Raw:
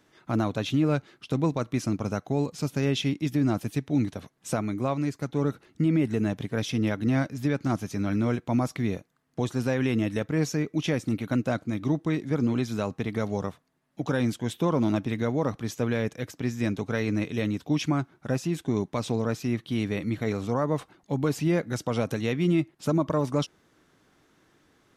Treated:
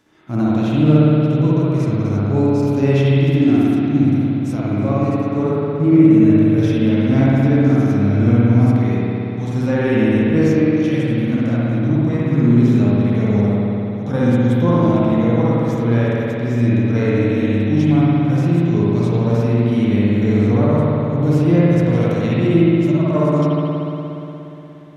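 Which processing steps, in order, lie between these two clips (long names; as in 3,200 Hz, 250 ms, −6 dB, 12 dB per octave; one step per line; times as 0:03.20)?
harmonic and percussive parts rebalanced percussive −13 dB
spring reverb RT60 3.4 s, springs 59 ms, chirp 60 ms, DRR −8 dB
level +5.5 dB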